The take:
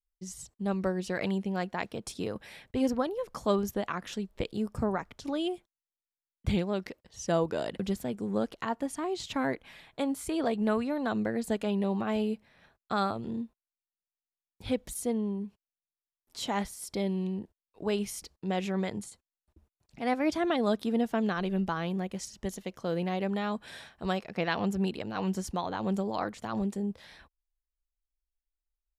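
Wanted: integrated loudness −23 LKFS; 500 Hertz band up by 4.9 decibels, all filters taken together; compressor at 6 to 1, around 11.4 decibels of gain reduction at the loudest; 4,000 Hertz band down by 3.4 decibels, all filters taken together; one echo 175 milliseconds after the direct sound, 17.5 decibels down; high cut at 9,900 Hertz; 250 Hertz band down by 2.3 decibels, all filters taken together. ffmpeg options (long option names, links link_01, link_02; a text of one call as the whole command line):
ffmpeg -i in.wav -af "lowpass=9900,equalizer=frequency=250:width_type=o:gain=-5,equalizer=frequency=500:width_type=o:gain=7.5,equalizer=frequency=4000:width_type=o:gain=-4.5,acompressor=threshold=-32dB:ratio=6,aecho=1:1:175:0.133,volume=14.5dB" out.wav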